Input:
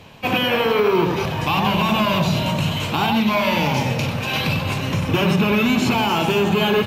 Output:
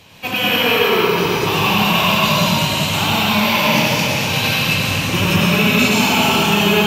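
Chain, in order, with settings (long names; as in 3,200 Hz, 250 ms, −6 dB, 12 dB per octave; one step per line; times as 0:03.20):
high-shelf EQ 2,400 Hz +11.5 dB
dense smooth reverb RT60 2.5 s, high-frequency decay 0.9×, pre-delay 80 ms, DRR −6 dB
level −5.5 dB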